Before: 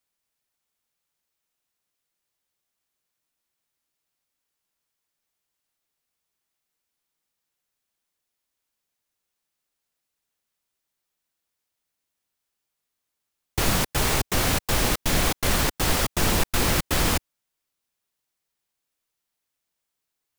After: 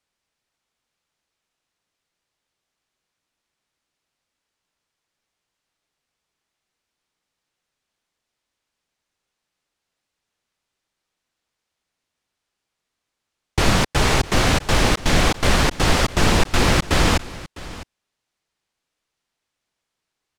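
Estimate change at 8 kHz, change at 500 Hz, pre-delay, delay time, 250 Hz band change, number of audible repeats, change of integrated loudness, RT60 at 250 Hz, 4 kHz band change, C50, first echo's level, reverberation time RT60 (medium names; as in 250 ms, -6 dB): +0.5 dB, +6.5 dB, no reverb, 655 ms, +6.5 dB, 1, +4.5 dB, no reverb, +4.5 dB, no reverb, -18.0 dB, no reverb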